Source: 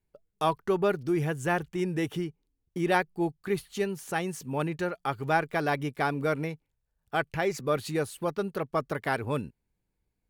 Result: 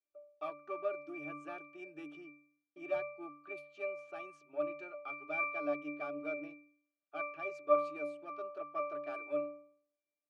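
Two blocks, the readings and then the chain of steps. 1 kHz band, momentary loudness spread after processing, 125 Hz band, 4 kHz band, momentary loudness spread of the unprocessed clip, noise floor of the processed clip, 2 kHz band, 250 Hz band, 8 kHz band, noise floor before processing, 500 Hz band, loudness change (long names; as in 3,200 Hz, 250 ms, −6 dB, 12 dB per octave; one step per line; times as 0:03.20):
−11.0 dB, 14 LU, −31.0 dB, below −20 dB, 6 LU, below −85 dBFS, −10.0 dB, −15.5 dB, below −25 dB, −81 dBFS, −8.0 dB, −10.0 dB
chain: one-sided soft clipper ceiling −21.5 dBFS
low-pass that shuts in the quiet parts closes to 2,700 Hz, open at −25 dBFS
high-pass filter 420 Hz 24 dB per octave
high-shelf EQ 2,800 Hz +11.5 dB
hard clipping −15 dBFS, distortion −31 dB
resonances in every octave D, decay 0.56 s
level +13.5 dB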